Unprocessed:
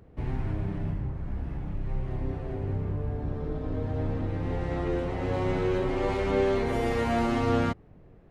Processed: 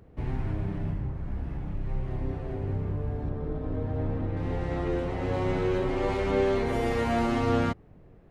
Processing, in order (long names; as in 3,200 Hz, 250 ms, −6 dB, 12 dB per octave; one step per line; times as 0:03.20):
0:03.29–0:04.37: high-shelf EQ 4,000 Hz −12 dB